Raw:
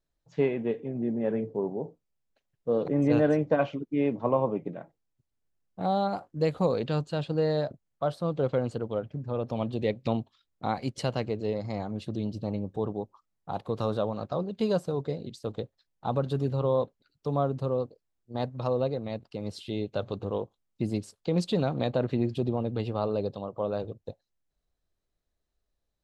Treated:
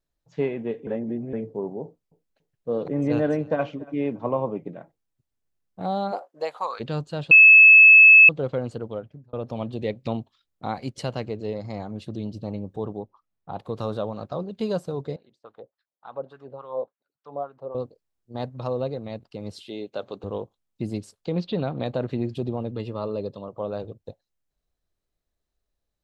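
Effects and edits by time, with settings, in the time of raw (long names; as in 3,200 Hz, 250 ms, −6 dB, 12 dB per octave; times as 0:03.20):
0:00.87–0:01.33: reverse
0:01.83–0:04.26: repeating echo 284 ms, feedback 26%, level −21.5 dB
0:06.11–0:06.79: high-pass with resonance 430 Hz → 1,300 Hz, resonance Q 3
0:07.31–0:08.29: beep over 2,600 Hz −7 dBFS
0:08.89–0:09.33: fade out
0:12.99–0:13.59: high-frequency loss of the air 170 metres
0:15.16–0:17.75: LFO wah 3.5 Hz 540–1,700 Hz, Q 2.2
0:19.67–0:20.24: high-pass filter 270 Hz
0:21.32–0:21.86: low-pass filter 4,200 Hz 24 dB per octave
0:22.71–0:23.48: notch comb filter 760 Hz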